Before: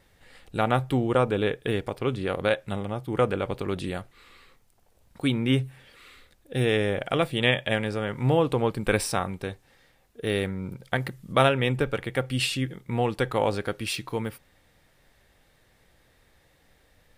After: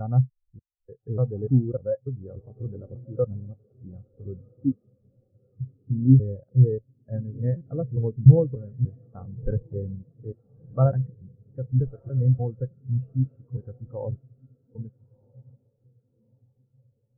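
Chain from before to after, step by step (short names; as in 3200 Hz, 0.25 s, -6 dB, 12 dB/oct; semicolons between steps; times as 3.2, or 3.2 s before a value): slices in reverse order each 0.295 s, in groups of 3; LPF 1700 Hz 24 dB/oct; low shelf 190 Hz +10.5 dB; on a send: diffused feedback echo 1.333 s, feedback 65%, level -10 dB; on the sum: stuck buffer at 7.56, samples 256, times 8; spectral expander 2.5:1; gain +3 dB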